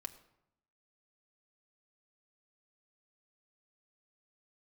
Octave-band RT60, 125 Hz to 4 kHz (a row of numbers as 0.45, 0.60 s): 1.0, 0.95, 0.80, 0.85, 0.70, 0.55 s